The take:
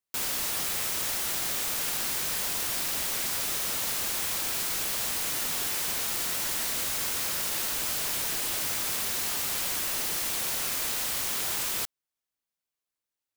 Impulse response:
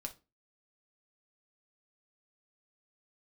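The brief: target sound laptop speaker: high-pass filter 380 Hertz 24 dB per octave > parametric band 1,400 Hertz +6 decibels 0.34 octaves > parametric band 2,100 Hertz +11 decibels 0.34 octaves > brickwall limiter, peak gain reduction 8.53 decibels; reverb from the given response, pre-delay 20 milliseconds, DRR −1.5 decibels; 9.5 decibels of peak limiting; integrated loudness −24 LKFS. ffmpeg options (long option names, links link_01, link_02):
-filter_complex "[0:a]alimiter=level_in=1.5dB:limit=-24dB:level=0:latency=1,volume=-1.5dB,asplit=2[link_01][link_02];[1:a]atrim=start_sample=2205,adelay=20[link_03];[link_02][link_03]afir=irnorm=-1:irlink=0,volume=4dB[link_04];[link_01][link_04]amix=inputs=2:normalize=0,highpass=frequency=380:width=0.5412,highpass=frequency=380:width=1.3066,equalizer=frequency=1400:width_type=o:width=0.34:gain=6,equalizer=frequency=2100:width_type=o:width=0.34:gain=11,volume=9dB,alimiter=limit=-17dB:level=0:latency=1"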